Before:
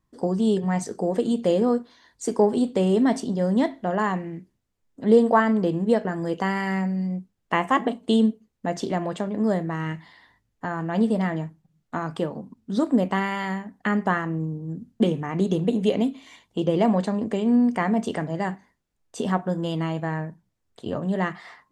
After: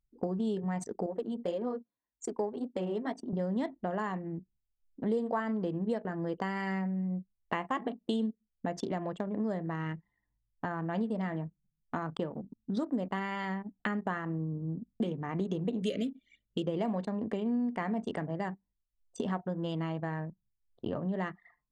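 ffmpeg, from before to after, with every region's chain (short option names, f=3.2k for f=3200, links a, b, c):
-filter_complex "[0:a]asettb=1/sr,asplit=3[a][b][c];[a]atrim=end=1.064[d];[b]atrim=start=1.06:end=3.33,asetpts=PTS-STARTPTS,afade=t=in:d=0.004:c=qsin,afade=t=out:st=2.266:d=0.004:c=qsin,highpass=f=320:p=1,flanger=delay=3.1:depth=6.7:regen=-19:speed=1.8:shape=sinusoidal[e];[c]atrim=start=3.326[f];[d][e]acrossfade=d=0.004:c1=hsin:c2=qsin[g];[g][f]acrossfade=d=0.004:c1=qsin:c2=hsin,asettb=1/sr,asplit=3[h][i][j];[h]atrim=end=15.824[k];[i]atrim=start=15.82:end=16.67,asetpts=PTS-STARTPTS,afade=t=in:d=0.004:c=qsin,afade=t=out:st=0.846:d=0.004:c=qsin,asuperstop=centerf=890:order=12:qfactor=1.6,highshelf=f=2.6k:g=8.5[l];[j]atrim=start=16.666[m];[k][l]acrossfade=d=0.004:c1=hsin:c2=qsin[n];[n][m]acrossfade=d=0.004:c1=qsin:c2=hsin,anlmdn=6.31,acompressor=threshold=-33dB:ratio=3"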